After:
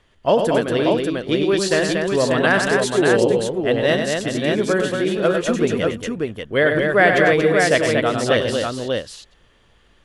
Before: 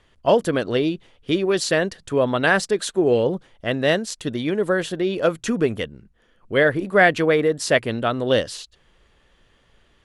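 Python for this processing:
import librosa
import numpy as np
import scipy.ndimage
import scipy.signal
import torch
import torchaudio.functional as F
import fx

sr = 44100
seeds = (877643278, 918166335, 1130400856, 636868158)

y = fx.echo_multitap(x, sr, ms=(97, 117, 233, 464, 590), db=(-6.5, -14.0, -4.5, -17.5, -4.0))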